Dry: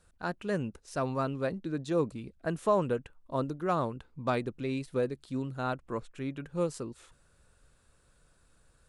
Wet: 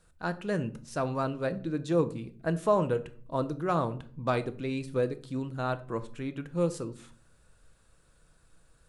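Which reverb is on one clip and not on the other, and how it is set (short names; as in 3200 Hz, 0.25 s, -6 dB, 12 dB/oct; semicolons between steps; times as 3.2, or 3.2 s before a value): shoebox room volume 460 m³, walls furnished, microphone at 0.63 m; gain +1 dB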